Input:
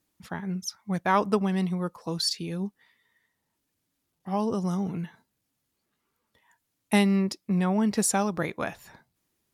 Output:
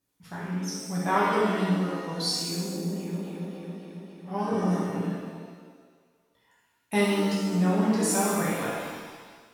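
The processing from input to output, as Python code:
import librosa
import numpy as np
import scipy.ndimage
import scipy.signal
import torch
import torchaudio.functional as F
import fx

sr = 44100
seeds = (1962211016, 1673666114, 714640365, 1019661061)

y = fx.echo_opening(x, sr, ms=276, hz=750, octaves=2, feedback_pct=70, wet_db=0, at=(2.38, 4.63))
y = fx.rev_shimmer(y, sr, seeds[0], rt60_s=1.5, semitones=7, shimmer_db=-8, drr_db=-7.5)
y = y * librosa.db_to_amplitude(-8.0)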